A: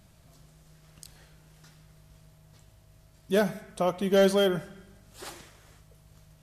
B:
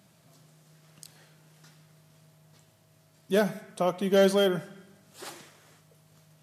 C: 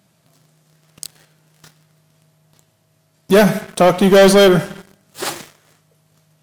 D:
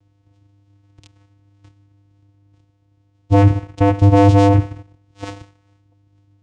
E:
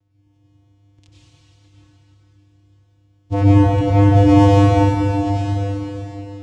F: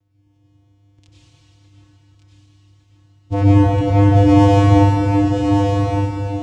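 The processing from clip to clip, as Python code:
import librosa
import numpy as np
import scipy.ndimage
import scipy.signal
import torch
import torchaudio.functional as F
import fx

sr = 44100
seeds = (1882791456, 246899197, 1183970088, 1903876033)

y1 = scipy.signal.sosfilt(scipy.signal.butter(4, 130.0, 'highpass', fs=sr, output='sos'), x)
y2 = fx.leveller(y1, sr, passes=3)
y2 = y2 * 10.0 ** (7.5 / 20.0)
y3 = fx.vocoder(y2, sr, bands=4, carrier='square', carrier_hz=100.0)
y4 = fx.rev_plate(y3, sr, seeds[0], rt60_s=3.8, hf_ratio=0.95, predelay_ms=80, drr_db=-9.5)
y4 = y4 * 10.0 ** (-8.0 / 20.0)
y5 = y4 + 10.0 ** (-5.5 / 20.0) * np.pad(y4, (int(1159 * sr / 1000.0), 0))[:len(y4)]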